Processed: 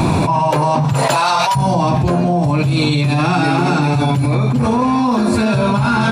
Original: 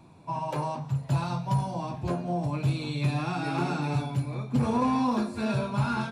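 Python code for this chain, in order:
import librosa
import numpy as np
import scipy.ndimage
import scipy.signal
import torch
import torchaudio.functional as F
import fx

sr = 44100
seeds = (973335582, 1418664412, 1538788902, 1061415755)

y = fx.highpass(x, sr, hz=fx.line((0.92, 380.0), (1.55, 1200.0)), slope=12, at=(0.92, 1.55), fade=0.02)
y = fx.env_flatten(y, sr, amount_pct=100)
y = y * 10.0 ** (7.5 / 20.0)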